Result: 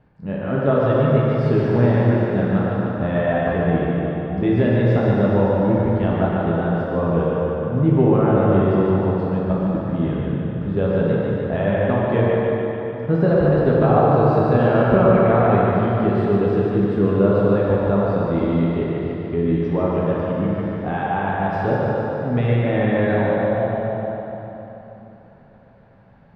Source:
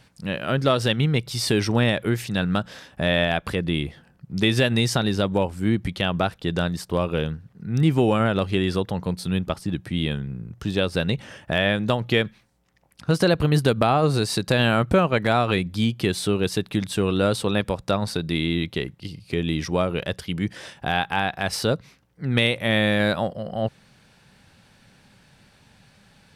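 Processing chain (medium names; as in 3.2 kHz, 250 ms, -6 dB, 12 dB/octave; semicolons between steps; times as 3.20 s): low-pass 1 kHz 12 dB/octave; thinning echo 147 ms, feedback 70%, high-pass 370 Hz, level -4.5 dB; plate-style reverb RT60 3.4 s, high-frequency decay 0.55×, DRR -5 dB; trim -1 dB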